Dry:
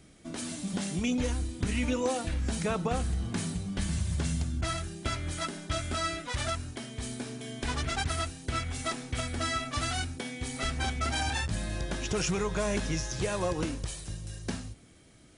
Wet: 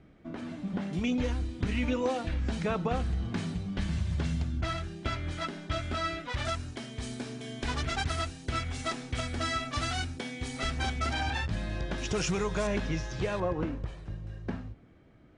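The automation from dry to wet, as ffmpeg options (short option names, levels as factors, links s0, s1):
-af "asetnsamples=n=441:p=0,asendcmd='0.93 lowpass f 3900;6.45 lowpass f 6500;11.13 lowpass f 3800;11.98 lowpass f 6900;12.67 lowpass f 3500;13.4 lowpass f 1700',lowpass=1900"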